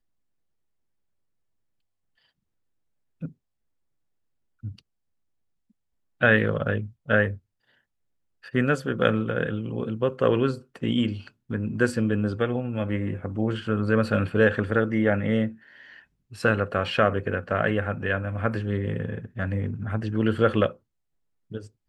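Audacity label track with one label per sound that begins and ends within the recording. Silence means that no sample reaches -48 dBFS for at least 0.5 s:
3.210000	3.320000	sound
4.630000	4.790000	sound
6.210000	7.380000	sound
8.430000	20.770000	sound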